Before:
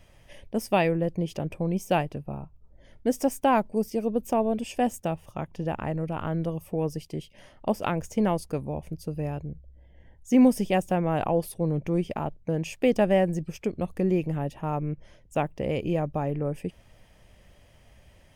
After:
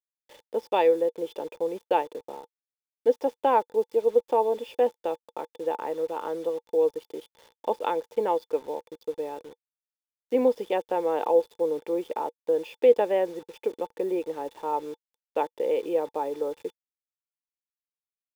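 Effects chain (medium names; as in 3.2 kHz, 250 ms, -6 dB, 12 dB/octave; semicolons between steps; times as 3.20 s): Chebyshev band-pass 310–4300 Hz, order 3; bit crusher 8-bit; small resonant body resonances 480/880/3500 Hz, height 15 dB, ringing for 45 ms; trim -5 dB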